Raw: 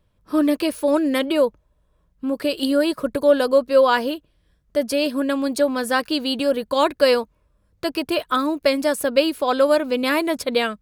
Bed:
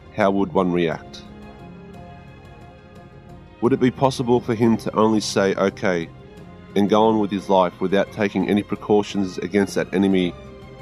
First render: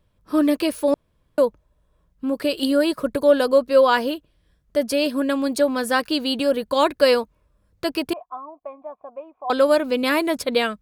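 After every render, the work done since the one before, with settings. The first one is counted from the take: 0.94–1.38 s: room tone; 8.13–9.50 s: cascade formant filter a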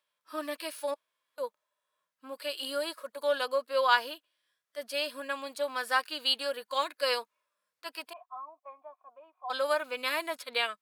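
high-pass 1.2 kHz 12 dB/octave; harmonic-percussive split percussive -15 dB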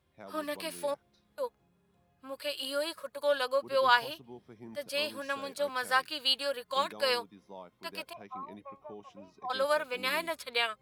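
add bed -31 dB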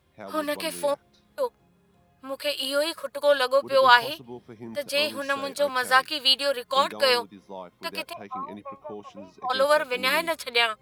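trim +8 dB

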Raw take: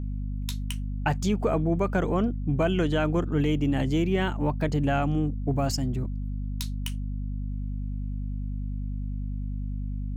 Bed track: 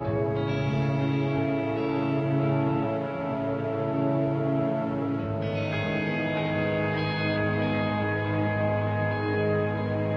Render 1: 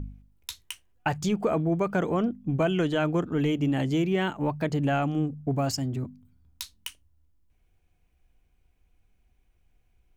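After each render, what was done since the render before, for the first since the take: de-hum 50 Hz, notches 5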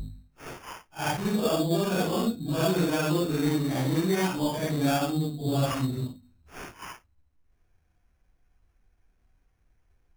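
phase randomisation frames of 200 ms; sample-rate reducer 4 kHz, jitter 0%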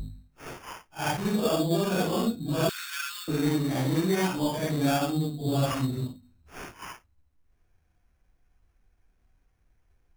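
2.69–3.28 s: steep high-pass 1.3 kHz 48 dB/octave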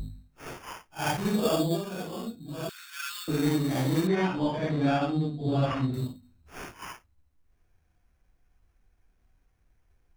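1.68–3.08 s: dip -9.5 dB, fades 0.15 s; 4.07–5.94 s: low-pass 3 kHz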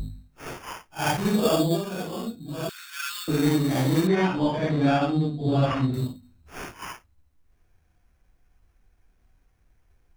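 trim +4 dB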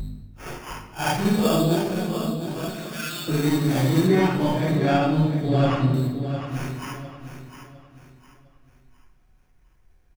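feedback delay 706 ms, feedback 33%, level -10 dB; simulated room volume 1100 m³, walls mixed, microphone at 0.98 m

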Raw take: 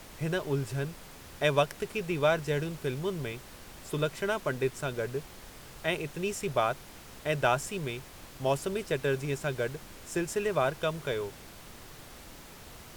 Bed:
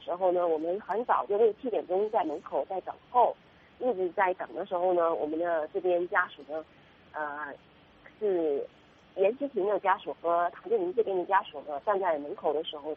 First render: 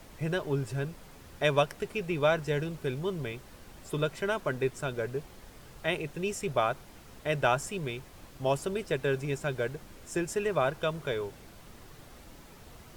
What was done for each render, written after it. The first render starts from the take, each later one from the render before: noise reduction 6 dB, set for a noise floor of -49 dBFS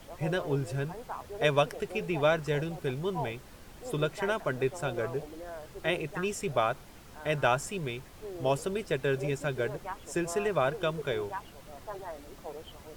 add bed -13.5 dB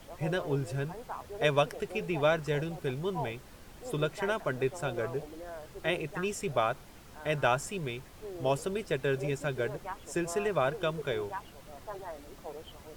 trim -1 dB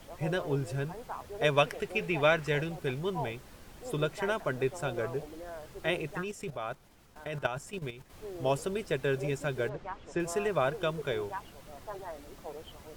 1.55–3.10 s: dynamic bell 2.2 kHz, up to +7 dB, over -46 dBFS, Q 1.1; 6.22–8.10 s: level held to a coarse grid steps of 12 dB; 9.69–10.20 s: distance through air 140 m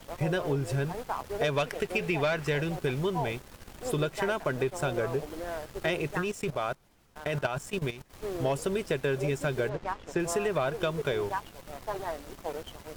waveshaping leveller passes 2; compression 4:1, threshold -26 dBFS, peak gain reduction 9 dB

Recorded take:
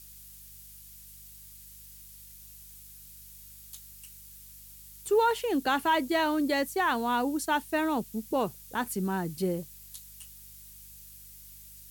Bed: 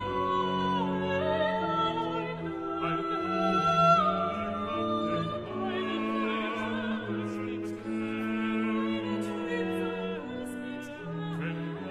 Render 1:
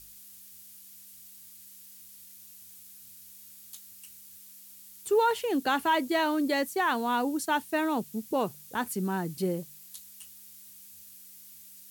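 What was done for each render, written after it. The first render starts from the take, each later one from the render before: de-hum 50 Hz, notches 3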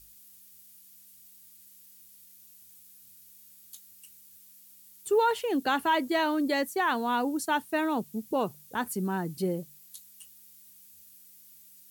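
noise reduction 6 dB, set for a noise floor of -51 dBFS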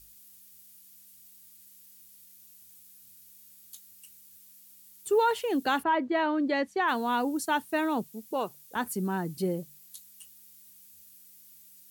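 5.82–6.87 s: low-pass 1.7 kHz -> 4.5 kHz; 8.07–8.76 s: high-pass 480 Hz 6 dB/octave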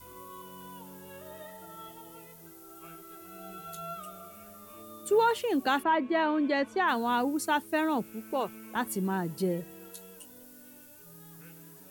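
add bed -18.5 dB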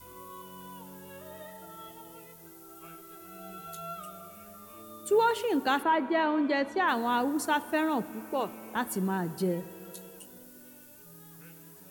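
plate-style reverb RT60 3.1 s, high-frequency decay 0.45×, DRR 15 dB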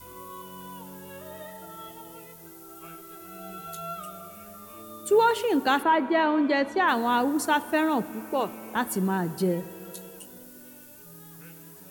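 trim +4 dB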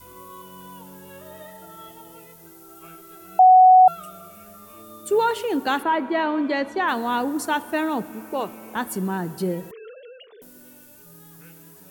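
3.39–3.88 s: bleep 743 Hz -7.5 dBFS; 9.71–10.42 s: formants replaced by sine waves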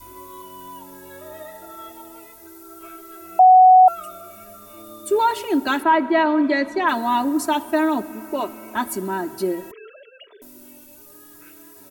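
band-stop 3.1 kHz, Q 12; comb 3.1 ms, depth 91%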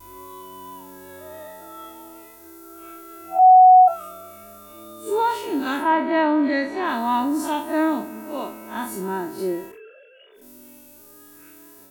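spectral blur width 95 ms; vibrato 0.43 Hz 13 cents

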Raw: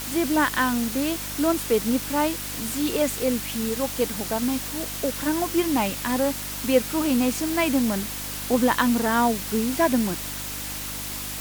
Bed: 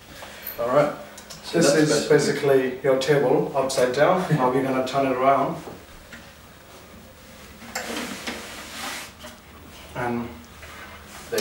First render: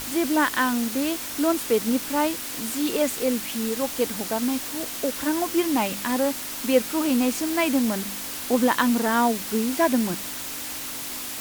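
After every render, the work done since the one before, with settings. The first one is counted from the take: de-hum 50 Hz, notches 4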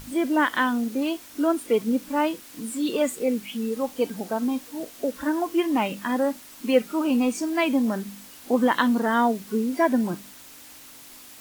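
noise print and reduce 13 dB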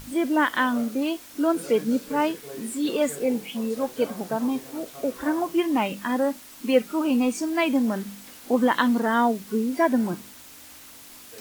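add bed -21.5 dB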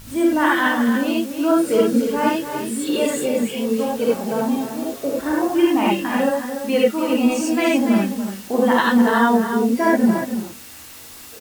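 delay 289 ms -8.5 dB; gated-style reverb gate 110 ms rising, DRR -4 dB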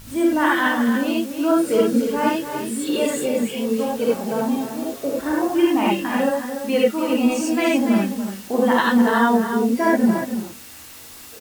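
trim -1 dB

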